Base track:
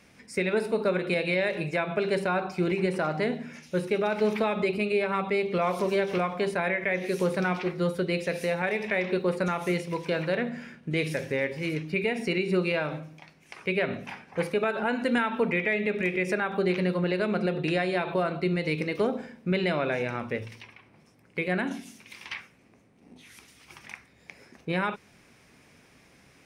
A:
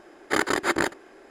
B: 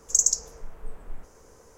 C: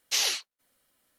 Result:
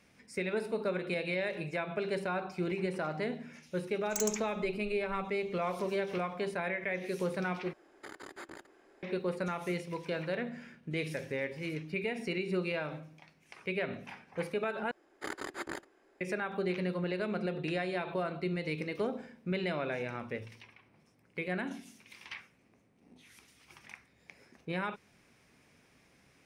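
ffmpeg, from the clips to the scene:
ffmpeg -i bed.wav -i cue0.wav -i cue1.wav -filter_complex "[1:a]asplit=2[link_01][link_02];[0:a]volume=-7.5dB[link_03];[2:a]aeval=exprs='(mod(2.37*val(0)+1,2)-1)/2.37':channel_layout=same[link_04];[link_01]acompressor=threshold=-27dB:ratio=8:attack=0.49:release=239:knee=1:detection=peak[link_05];[link_03]asplit=3[link_06][link_07][link_08];[link_06]atrim=end=7.734[link_09];[link_05]atrim=end=1.3,asetpts=PTS-STARTPTS,volume=-12.5dB[link_10];[link_07]atrim=start=9.026:end=14.914[link_11];[link_02]atrim=end=1.3,asetpts=PTS-STARTPTS,volume=-16.5dB[link_12];[link_08]atrim=start=16.206[link_13];[link_04]atrim=end=1.77,asetpts=PTS-STARTPTS,volume=-15.5dB,afade=type=in:duration=0.004:curve=hsin,afade=type=out:start_time=1.766:duration=0.004:curve=hsin,adelay=176841S[link_14];[link_09][link_10]acrossfade=duration=0.004:curve1=hsin:curve2=hsin[link_15];[link_15][link_11]acrossfade=duration=0.004:curve1=hsin:curve2=hsin[link_16];[link_16][link_12]acrossfade=duration=0.004:curve1=hsin:curve2=hsin[link_17];[link_17][link_13]acrossfade=duration=0.004:curve1=hsin:curve2=hsin[link_18];[link_18][link_14]amix=inputs=2:normalize=0" out.wav

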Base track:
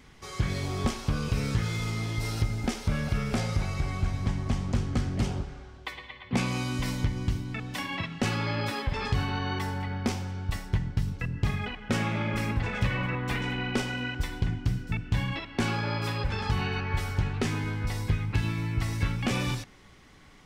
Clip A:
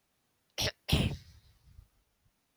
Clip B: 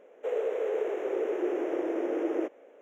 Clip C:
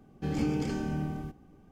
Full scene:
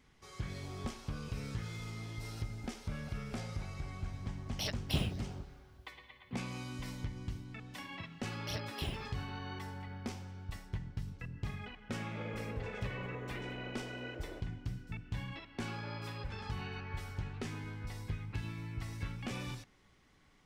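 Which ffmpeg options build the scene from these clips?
ffmpeg -i bed.wav -i cue0.wav -i cue1.wav -filter_complex "[1:a]asplit=2[link_01][link_02];[0:a]volume=-12.5dB[link_03];[link_02]aphaser=in_gain=1:out_gain=1:delay=3:decay=0.5:speed=1.5:type=triangular[link_04];[2:a]equalizer=frequency=320:width_type=o:width=0.77:gain=-7.5[link_05];[link_01]atrim=end=2.56,asetpts=PTS-STARTPTS,volume=-5.5dB,afade=type=in:duration=0.004:curve=hsin,afade=type=out:start_time=2.556:duration=0.004:curve=hsin,adelay=176841S[link_06];[link_04]atrim=end=2.56,asetpts=PTS-STARTPTS,volume=-11.5dB,afade=type=in:duration=0.004:curve=hsin,afade=type=out:start_time=2.556:duration=0.004:curve=hsin,adelay=7890[link_07];[link_05]atrim=end=2.81,asetpts=PTS-STARTPTS,volume=-15.5dB,afade=type=in:duration=0.004:curve=hsin,afade=type=out:start_time=2.806:duration=0.004:curve=hsin,adelay=11930[link_08];[link_03][link_06][link_07][link_08]amix=inputs=4:normalize=0" out.wav

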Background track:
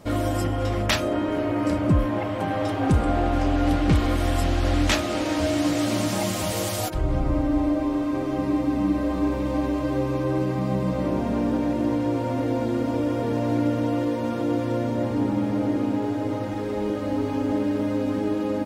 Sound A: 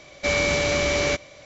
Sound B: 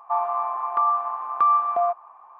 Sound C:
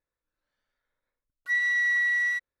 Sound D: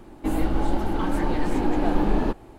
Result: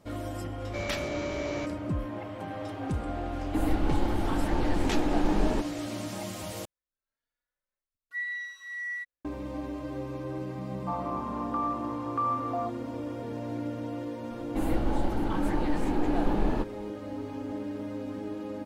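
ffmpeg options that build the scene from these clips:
ffmpeg -i bed.wav -i cue0.wav -i cue1.wav -i cue2.wav -i cue3.wav -filter_complex "[4:a]asplit=2[link_01][link_02];[0:a]volume=-11.5dB[link_03];[1:a]highshelf=frequency=2100:gain=-9[link_04];[3:a]asplit=2[link_05][link_06];[link_06]adelay=3.6,afreqshift=1.2[link_07];[link_05][link_07]amix=inputs=2:normalize=1[link_08];[link_03]asplit=2[link_09][link_10];[link_09]atrim=end=6.654[link_11];[link_08]atrim=end=2.6,asetpts=PTS-STARTPTS,volume=-8dB[link_12];[link_10]atrim=start=9.246[link_13];[link_04]atrim=end=1.45,asetpts=PTS-STARTPTS,volume=-11dB,afade=type=in:duration=0.004:curve=hsin,afade=type=out:start_time=1.446:duration=0.004:curve=hsin,adelay=500[link_14];[link_01]atrim=end=2.58,asetpts=PTS-STARTPTS,volume=-4.5dB,afade=type=in:duration=0.004:curve=hsin,afade=type=out:start_time=2.576:duration=0.004:curve=hsin,adelay=145089S[link_15];[2:a]atrim=end=2.39,asetpts=PTS-STARTPTS,volume=-10.5dB,afade=type=in:duration=0.004:curve=hsin,afade=type=out:start_time=2.386:duration=0.004:curve=hsin,adelay=10770[link_16];[link_02]atrim=end=2.58,asetpts=PTS-STARTPTS,volume=-5dB,afade=type=in:duration=0.004:curve=hsin,afade=type=out:start_time=2.576:duration=0.004:curve=hsin,adelay=14310[link_17];[link_11][link_12]acrossfade=duration=0.004:curve1=hsin:curve2=hsin[link_18];[link_18][link_13]acrossfade=duration=0.004:curve1=hsin:curve2=hsin[link_19];[link_19][link_14][link_15][link_16][link_17]amix=inputs=5:normalize=0" out.wav

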